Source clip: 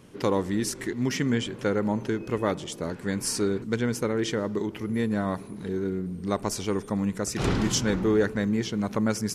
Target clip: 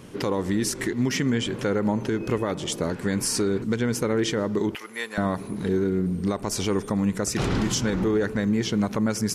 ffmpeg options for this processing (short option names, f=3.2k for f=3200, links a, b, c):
-filter_complex "[0:a]asettb=1/sr,asplit=3[a][b][c];[a]atrim=end=4.754[d];[b]atrim=start=4.75:end=5.18,asetpts=PTS-STARTPTS,afade=t=in:d=0.004:c=qsin,afade=t=out:st=0.426:d=0.004:c=qsin,highpass=1k[e];[c]atrim=start=5.176[f];[d][e]acrossfade=d=0.004:c1=hsin:c2=qsin[g];[g][f]acrossfade=d=0.004:c1=qsin:c2=hsin,alimiter=limit=-22.5dB:level=0:latency=1:release=183,volume=7.5dB"